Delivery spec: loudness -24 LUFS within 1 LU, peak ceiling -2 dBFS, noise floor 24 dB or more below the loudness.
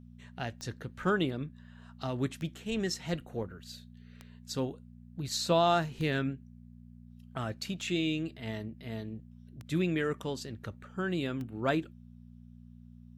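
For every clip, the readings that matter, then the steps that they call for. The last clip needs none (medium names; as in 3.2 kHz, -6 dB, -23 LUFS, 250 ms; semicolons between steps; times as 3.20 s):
clicks found 7; hum 60 Hz; highest harmonic 240 Hz; hum level -51 dBFS; loudness -34.0 LUFS; peak level -14.5 dBFS; loudness target -24.0 LUFS
-> de-click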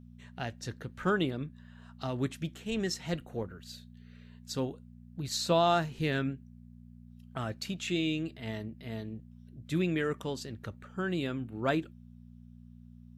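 clicks found 0; hum 60 Hz; highest harmonic 240 Hz; hum level -51 dBFS
-> de-hum 60 Hz, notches 4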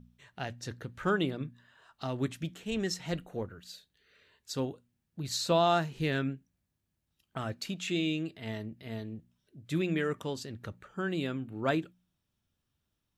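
hum not found; loudness -34.0 LUFS; peak level -15.0 dBFS; loudness target -24.0 LUFS
-> trim +10 dB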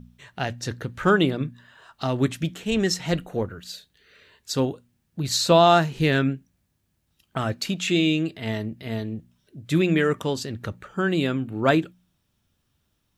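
loudness -24.0 LUFS; peak level -5.0 dBFS; noise floor -72 dBFS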